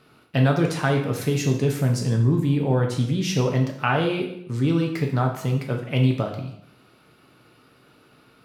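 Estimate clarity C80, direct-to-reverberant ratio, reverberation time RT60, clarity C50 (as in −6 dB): 10.0 dB, 1.5 dB, 0.75 s, 7.0 dB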